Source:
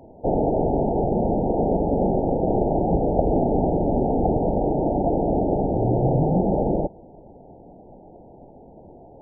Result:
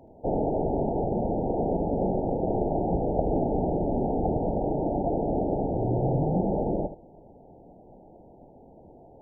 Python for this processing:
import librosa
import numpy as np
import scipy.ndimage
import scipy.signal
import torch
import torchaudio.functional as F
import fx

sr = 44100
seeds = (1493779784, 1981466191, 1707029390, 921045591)

y = x + 10.0 ** (-12.0 / 20.0) * np.pad(x, (int(75 * sr / 1000.0), 0))[:len(x)]
y = y * librosa.db_to_amplitude(-5.5)